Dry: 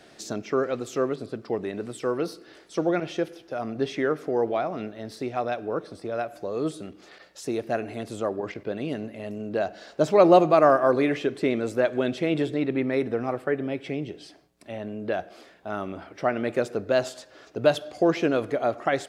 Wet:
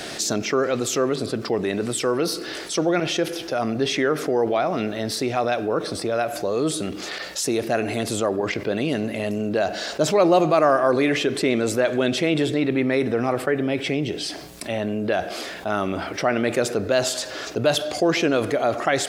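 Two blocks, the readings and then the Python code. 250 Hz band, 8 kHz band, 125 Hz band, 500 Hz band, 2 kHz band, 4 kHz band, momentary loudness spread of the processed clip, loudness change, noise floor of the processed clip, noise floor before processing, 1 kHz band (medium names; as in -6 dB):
+4.0 dB, no reading, +5.5 dB, +2.5 dB, +6.5 dB, +12.5 dB, 7 LU, +3.5 dB, -34 dBFS, -53 dBFS, +2.5 dB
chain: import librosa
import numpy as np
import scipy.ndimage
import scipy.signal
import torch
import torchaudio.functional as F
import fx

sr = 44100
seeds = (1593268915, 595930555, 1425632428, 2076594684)

y = fx.high_shelf(x, sr, hz=2600.0, db=8.0)
y = fx.env_flatten(y, sr, amount_pct=50)
y = F.gain(torch.from_numpy(y), -2.5).numpy()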